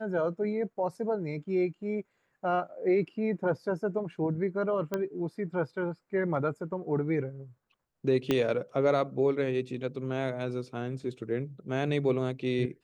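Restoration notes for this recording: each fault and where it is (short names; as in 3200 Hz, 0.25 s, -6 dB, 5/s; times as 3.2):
4.94 pop -17 dBFS
8.31 pop -13 dBFS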